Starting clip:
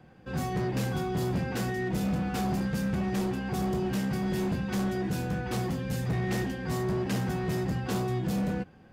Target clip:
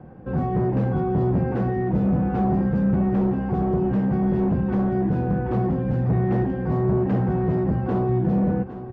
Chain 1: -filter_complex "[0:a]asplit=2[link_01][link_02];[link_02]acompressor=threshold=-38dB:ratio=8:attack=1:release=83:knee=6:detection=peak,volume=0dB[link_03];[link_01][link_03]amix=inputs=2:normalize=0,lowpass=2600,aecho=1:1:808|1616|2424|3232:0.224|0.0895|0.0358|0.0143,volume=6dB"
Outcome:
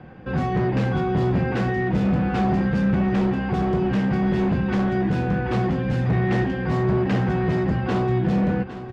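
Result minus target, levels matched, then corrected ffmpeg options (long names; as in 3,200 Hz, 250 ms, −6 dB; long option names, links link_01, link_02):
2,000 Hz band +10.0 dB
-filter_complex "[0:a]asplit=2[link_01][link_02];[link_02]acompressor=threshold=-38dB:ratio=8:attack=1:release=83:knee=6:detection=peak,volume=0dB[link_03];[link_01][link_03]amix=inputs=2:normalize=0,lowpass=920,aecho=1:1:808|1616|2424|3232:0.224|0.0895|0.0358|0.0143,volume=6dB"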